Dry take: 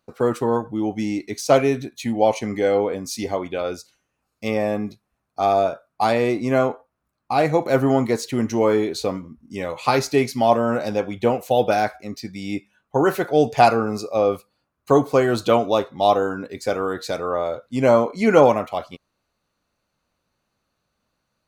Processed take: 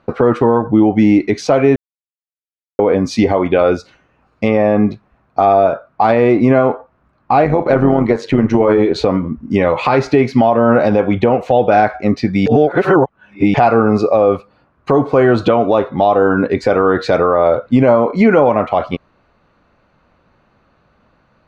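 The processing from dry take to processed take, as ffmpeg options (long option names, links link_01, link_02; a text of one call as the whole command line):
ffmpeg -i in.wav -filter_complex "[0:a]asettb=1/sr,asplit=3[link_01][link_02][link_03];[link_01]atrim=end=7.444[link_04];[link_02]atrim=start=7.44:end=8.96,asetpts=PTS-STARTPTS,afade=type=in:duration=0.004:curve=qsin,afade=type=out:start_time=1.516:duration=0.004:curve=qsin,tremolo=f=97:d=0.621[link_05];[link_03]atrim=start=8.956[link_06];[link_04][link_05]acrossfade=duration=0.004:curve1=hsin:curve2=qsin[link_07];[link_07][link_06]acrossfade=duration=0.004:curve1=qsin:curve2=hsin,asplit=5[link_08][link_09][link_10][link_11][link_12];[link_08]atrim=end=1.76,asetpts=PTS-STARTPTS,afade=type=out:start_time=1.756:duration=0.004:curve=hsin[link_13];[link_09]atrim=start=1.76:end=2.79,asetpts=PTS-STARTPTS,volume=0[link_14];[link_10]atrim=start=2.79:end=12.462,asetpts=PTS-STARTPTS,afade=type=in:duration=0.004:curve=hsin[link_15];[link_11]atrim=start=12.458:end=13.542,asetpts=PTS-STARTPTS,areverse[link_16];[link_12]atrim=start=13.538[link_17];[link_13][link_14][link_15]concat=n=3:v=0:a=1[link_18];[link_18][link_16]acrossfade=duration=0.004:curve1=hsin:curve2=hsin[link_19];[link_19][link_17]acrossfade=duration=0.004:curve1=hsin:curve2=hsin,lowpass=2100,acompressor=threshold=-28dB:ratio=3,alimiter=level_in=21dB:limit=-1dB:release=50:level=0:latency=1,volume=-1dB" out.wav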